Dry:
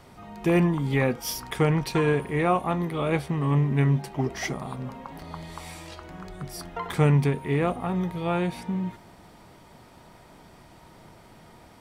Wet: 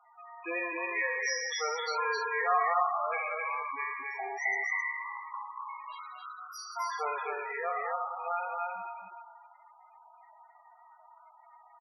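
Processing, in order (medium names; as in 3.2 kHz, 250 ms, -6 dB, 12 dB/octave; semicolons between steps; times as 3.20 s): spectral sustain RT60 2.14 s; high-pass 940 Hz 12 dB/octave; loudest bins only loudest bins 8; on a send: delay 264 ms -3 dB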